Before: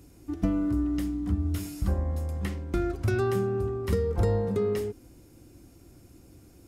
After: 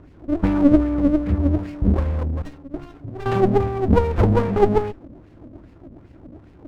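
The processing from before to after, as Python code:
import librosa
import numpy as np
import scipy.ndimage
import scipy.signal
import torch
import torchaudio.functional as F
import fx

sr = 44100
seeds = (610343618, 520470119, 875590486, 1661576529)

y = fx.stiff_resonator(x, sr, f0_hz=140.0, decay_s=0.26, stiffness=0.008, at=(2.42, 3.26))
y = fx.filter_lfo_lowpass(y, sr, shape='sine', hz=2.5, low_hz=230.0, high_hz=2400.0, q=4.7)
y = fx.running_max(y, sr, window=33)
y = F.gain(torch.from_numpy(y), 7.0).numpy()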